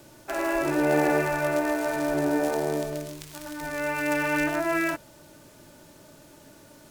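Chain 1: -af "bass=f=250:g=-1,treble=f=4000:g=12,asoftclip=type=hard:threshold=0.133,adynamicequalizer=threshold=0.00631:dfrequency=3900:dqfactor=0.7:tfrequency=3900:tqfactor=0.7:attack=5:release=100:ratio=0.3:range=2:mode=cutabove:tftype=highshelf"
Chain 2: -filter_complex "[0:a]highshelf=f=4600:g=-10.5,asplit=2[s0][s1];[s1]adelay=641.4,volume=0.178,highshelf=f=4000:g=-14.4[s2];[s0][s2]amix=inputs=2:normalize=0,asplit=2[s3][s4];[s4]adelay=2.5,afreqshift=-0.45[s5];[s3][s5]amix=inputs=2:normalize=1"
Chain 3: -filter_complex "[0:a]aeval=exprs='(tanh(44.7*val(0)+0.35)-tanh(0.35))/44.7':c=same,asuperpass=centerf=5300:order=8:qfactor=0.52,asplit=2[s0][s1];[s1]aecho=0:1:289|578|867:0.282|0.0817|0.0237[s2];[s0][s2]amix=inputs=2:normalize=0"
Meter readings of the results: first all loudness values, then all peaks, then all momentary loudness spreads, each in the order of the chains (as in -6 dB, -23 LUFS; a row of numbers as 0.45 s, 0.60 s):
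-26.5 LUFS, -29.5 LUFS, -43.5 LUFS; -17.5 dBFS, -14.5 dBFS, -27.5 dBFS; 20 LU, 16 LU, 16 LU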